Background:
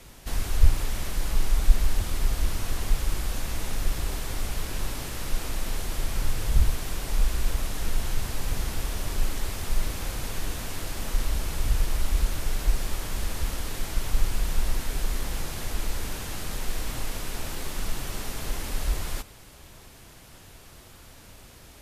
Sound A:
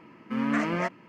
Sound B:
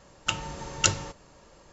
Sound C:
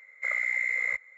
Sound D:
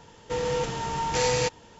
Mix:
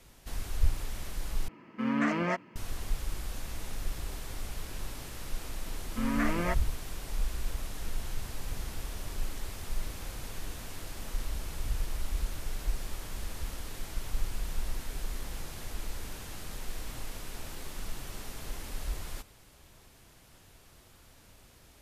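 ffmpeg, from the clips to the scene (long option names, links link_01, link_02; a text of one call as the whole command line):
ffmpeg -i bed.wav -i cue0.wav -filter_complex "[1:a]asplit=2[link_01][link_02];[0:a]volume=-8.5dB,asplit=2[link_03][link_04];[link_03]atrim=end=1.484[link_05];[link_01]atrim=end=1.08,asetpts=PTS-STARTPTS,volume=-2dB[link_06];[link_04]atrim=start=2.556[link_07];[link_02]atrim=end=1.08,asetpts=PTS-STARTPTS,volume=-3.5dB,afade=type=in:duration=0.004:curve=hsin,afade=type=out:start_time=1.076:duration=0.004:curve=hsin,adelay=5660[link_08];[link_05][link_06]acrossfade=duration=0.004:curve1=hsin:curve2=hsin[link_09];[link_09][link_07]acrossfade=duration=0.004:curve1=hsin:curve2=hsin[link_10];[link_10][link_08]amix=inputs=2:normalize=0" out.wav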